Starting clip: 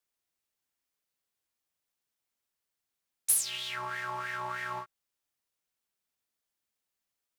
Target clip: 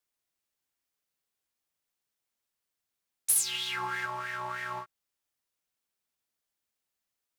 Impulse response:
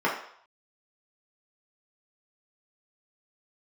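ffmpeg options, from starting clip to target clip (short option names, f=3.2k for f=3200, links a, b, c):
-filter_complex "[0:a]asettb=1/sr,asplit=3[a][b][c];[a]atrim=end=3.354[d];[b]atrim=start=3.35:end=4.06,asetpts=PTS-STARTPTS,afade=t=in:d=0.004:c=qsin,afade=t=out:st=0.706:d=0.004:c=qsin,aecho=1:1:5.7:1,atrim=end_sample=31311[e];[c]atrim=start=4.056[f];[d][e]acrossfade=d=0.004:c1=hsin:c2=qsin[g];[g][f]acrossfade=d=0.004:c1=qsin:c2=hsin"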